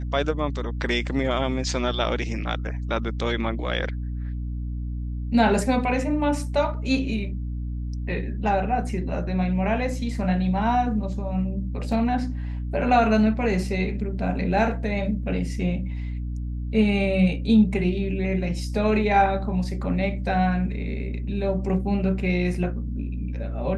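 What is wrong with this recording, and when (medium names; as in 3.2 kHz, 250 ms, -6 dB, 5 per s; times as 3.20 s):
hum 60 Hz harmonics 5 -29 dBFS
11.92 s: dropout 2.1 ms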